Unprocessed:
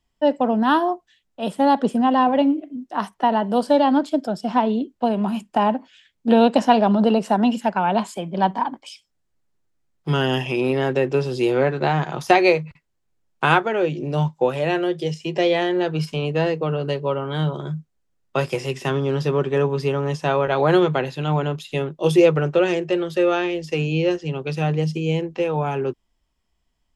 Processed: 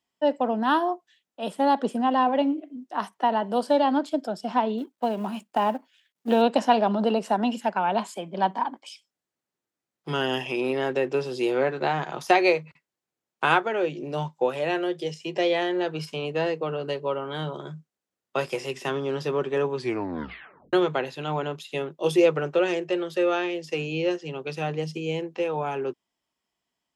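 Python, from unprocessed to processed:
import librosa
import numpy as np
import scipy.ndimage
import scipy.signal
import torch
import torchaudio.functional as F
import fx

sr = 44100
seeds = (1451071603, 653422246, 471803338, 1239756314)

y = fx.law_mismatch(x, sr, coded='A', at=(4.78, 6.42))
y = fx.edit(y, sr, fx.tape_stop(start_s=19.75, length_s=0.98), tone=tone)
y = scipy.signal.sosfilt(scipy.signal.bessel(2, 270.0, 'highpass', norm='mag', fs=sr, output='sos'), y)
y = F.gain(torch.from_numpy(y), -3.5).numpy()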